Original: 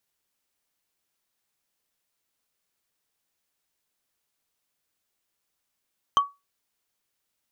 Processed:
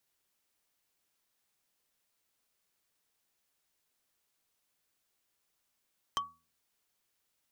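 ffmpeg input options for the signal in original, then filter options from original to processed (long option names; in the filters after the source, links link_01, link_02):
-f lavfi -i "aevalsrc='0.251*pow(10,-3*t/0.22)*sin(2*PI*1130*t)+0.0891*pow(10,-3*t/0.065)*sin(2*PI*3115.4*t)+0.0316*pow(10,-3*t/0.029)*sin(2*PI*6106.5*t)+0.0112*pow(10,-3*t/0.016)*sin(2*PI*10094.3*t)+0.00398*pow(10,-3*t/0.01)*sin(2*PI*15074.2*t)':duration=0.45:sample_rate=44100"
-filter_complex "[0:a]bandreject=frequency=81.42:width_type=h:width=4,bandreject=frequency=162.84:width_type=h:width=4,bandreject=frequency=244.26:width_type=h:width=4,acrossover=split=400|3000[link_01][link_02][link_03];[link_02]acompressor=threshold=-33dB:ratio=6[link_04];[link_01][link_04][link_03]amix=inputs=3:normalize=0,asoftclip=type=tanh:threshold=-24.5dB"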